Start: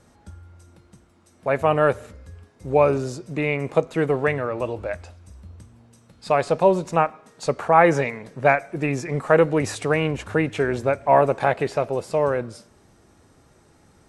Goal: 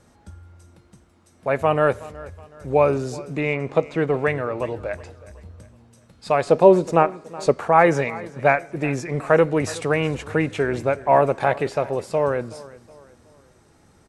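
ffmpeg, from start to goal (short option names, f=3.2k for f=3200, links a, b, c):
-filter_complex "[0:a]asettb=1/sr,asplit=3[a][b][c];[a]atrim=end=3.404[d];[b]atrim=start=3.4:end=4.14,asetpts=PTS-STARTPTS,afade=t=in:d=0.004:c=qsin,afade=t=out:st=0.736:d=0.004:c=qsin,lowpass=5.8k[e];[c]atrim=start=4.136[f];[d][e]acrossfade=d=0.004:c1=hsin:c2=qsin[g];[g][f]acrossfade=d=0.004:c1=qsin:c2=hsin,asettb=1/sr,asplit=3[h][i][j];[h]atrim=end=6.484[k];[i]atrim=start=6.48:end=7.52,asetpts=PTS-STARTPTS,afade=t=in:d=0.004:c=qsin,afade=t=out:st=1.036:d=0.004:c=qsin,equalizer=f=350:t=o:w=1.5:g=7.5[l];[j]atrim=start=7.516[m];[k][l]acrossfade=d=0.004:c1=hsin:c2=qsin[n];[n][m]acrossfade=d=0.004:c1=qsin:c2=hsin,aecho=1:1:371|742|1113:0.106|0.0434|0.0178"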